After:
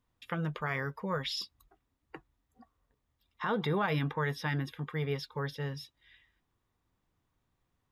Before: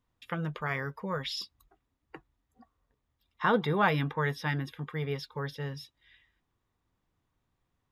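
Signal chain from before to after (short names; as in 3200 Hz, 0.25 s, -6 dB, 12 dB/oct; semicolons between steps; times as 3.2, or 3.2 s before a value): limiter -22.5 dBFS, peak gain reduction 10.5 dB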